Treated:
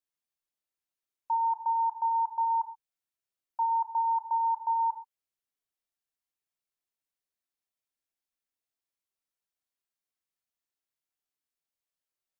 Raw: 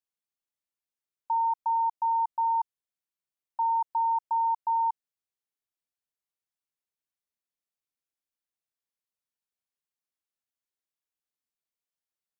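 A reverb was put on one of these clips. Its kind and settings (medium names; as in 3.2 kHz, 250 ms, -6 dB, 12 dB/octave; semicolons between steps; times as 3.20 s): gated-style reverb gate 150 ms falling, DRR 4 dB; trim -2 dB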